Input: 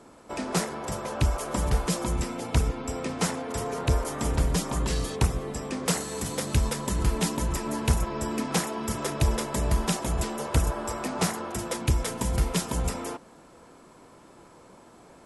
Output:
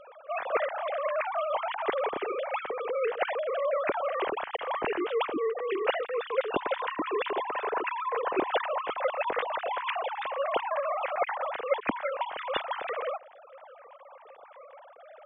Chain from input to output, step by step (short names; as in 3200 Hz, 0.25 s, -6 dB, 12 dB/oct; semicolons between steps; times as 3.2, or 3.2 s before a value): sine-wave speech; gain -3.5 dB